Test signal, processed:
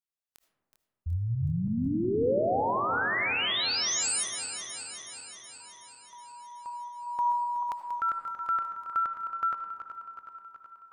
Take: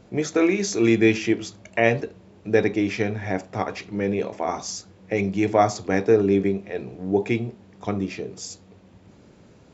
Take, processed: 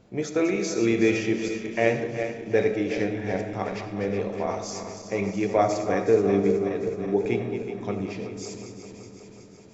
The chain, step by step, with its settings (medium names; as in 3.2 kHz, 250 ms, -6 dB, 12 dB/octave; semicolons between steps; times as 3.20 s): backward echo that repeats 186 ms, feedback 79%, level -9.5 dB; algorithmic reverb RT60 1.8 s, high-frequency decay 0.25×, pre-delay 35 ms, DRR 8.5 dB; dynamic bell 520 Hz, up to +4 dB, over -30 dBFS, Q 2.4; trim -5.5 dB